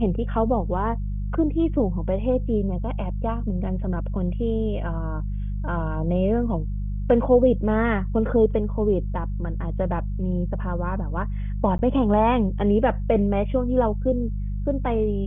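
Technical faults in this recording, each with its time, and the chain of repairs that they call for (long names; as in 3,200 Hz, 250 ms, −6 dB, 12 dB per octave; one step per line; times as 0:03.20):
mains hum 50 Hz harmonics 4 −27 dBFS
0:11.78–0:11.79: drop-out 10 ms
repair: hum removal 50 Hz, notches 4
repair the gap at 0:11.78, 10 ms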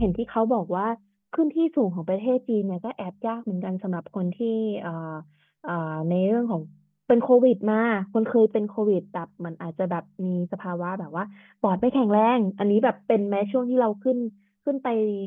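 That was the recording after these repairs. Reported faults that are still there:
none of them is left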